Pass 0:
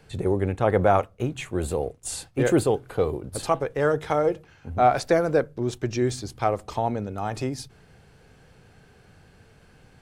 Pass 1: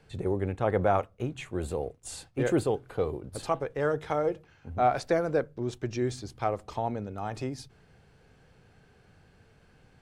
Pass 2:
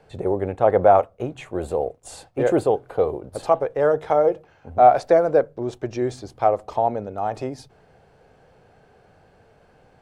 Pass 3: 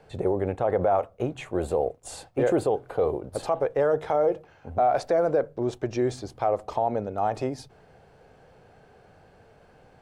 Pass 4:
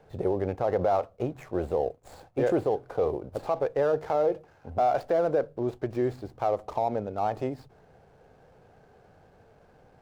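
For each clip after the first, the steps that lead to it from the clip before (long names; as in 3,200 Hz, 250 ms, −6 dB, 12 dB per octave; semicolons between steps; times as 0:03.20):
high-shelf EQ 9,000 Hz −8 dB; level −5.5 dB
parametric band 650 Hz +12.5 dB 1.6 octaves
brickwall limiter −14.5 dBFS, peak gain reduction 11 dB
running median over 15 samples; level −2 dB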